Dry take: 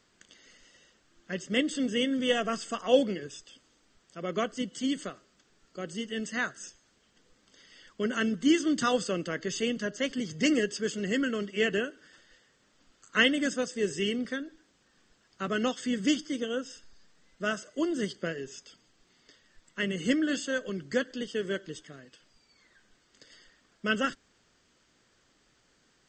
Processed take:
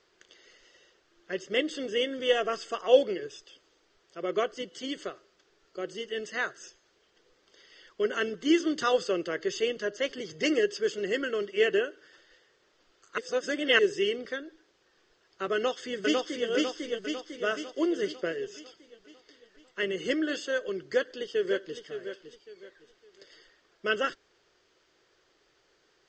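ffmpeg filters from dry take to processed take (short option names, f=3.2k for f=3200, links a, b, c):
-filter_complex "[0:a]asplit=2[a][b];[b]afade=t=in:st=15.54:d=0.01,afade=t=out:st=16.48:d=0.01,aecho=0:1:500|1000|1500|2000|2500|3000|3500|4000:0.891251|0.490188|0.269603|0.148282|0.081555|0.0448553|0.0246704|0.0135687[c];[a][c]amix=inputs=2:normalize=0,asplit=2[d][e];[e]afade=t=in:st=20.78:d=0.01,afade=t=out:st=21.8:d=0.01,aecho=0:1:560|1120|1680:0.316228|0.0948683|0.0284605[f];[d][f]amix=inputs=2:normalize=0,asplit=3[g][h][i];[g]atrim=end=13.182[j];[h]atrim=start=13.178:end=13.792,asetpts=PTS-STARTPTS,areverse[k];[i]atrim=start=13.788[l];[j][k]acrossfade=d=0.004:c1=hsin:c2=hsin[m];[m][l]acrossfade=d=0.004:c1=hsin:c2=hsin,lowpass=f=6.1k:w=0.5412,lowpass=f=6.1k:w=1.3066,lowshelf=f=300:t=q:w=3:g=-6.5"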